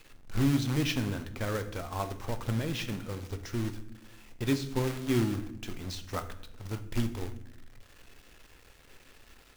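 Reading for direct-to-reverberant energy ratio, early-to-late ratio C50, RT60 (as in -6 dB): 8.0 dB, 13.0 dB, 0.80 s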